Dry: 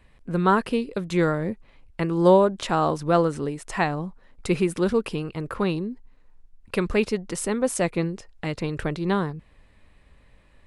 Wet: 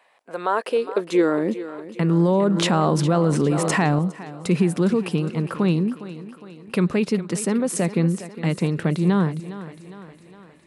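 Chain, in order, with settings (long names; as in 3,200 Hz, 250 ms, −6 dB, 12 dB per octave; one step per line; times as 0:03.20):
brickwall limiter −16 dBFS, peak gain reduction 10.5 dB
high-pass filter sweep 720 Hz → 170 Hz, 0:00.23–0:02.09
feedback echo with a high-pass in the loop 409 ms, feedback 58%, high-pass 170 Hz, level −13.5 dB
0:02.28–0:03.99: envelope flattener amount 70%
level +2 dB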